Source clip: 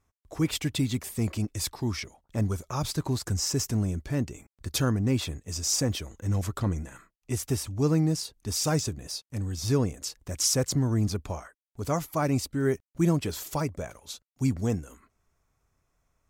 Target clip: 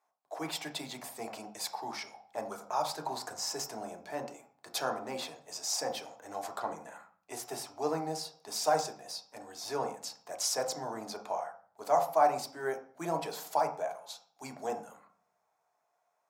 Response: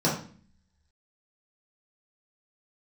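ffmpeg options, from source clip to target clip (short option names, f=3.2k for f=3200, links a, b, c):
-filter_complex "[0:a]highpass=f=750:t=q:w=4.2,asplit=2[a][b];[1:a]atrim=start_sample=2205,asetrate=41454,aresample=44100,highshelf=f=4.6k:g=-6.5[c];[b][c]afir=irnorm=-1:irlink=0,volume=-14dB[d];[a][d]amix=inputs=2:normalize=0,volume=-7.5dB"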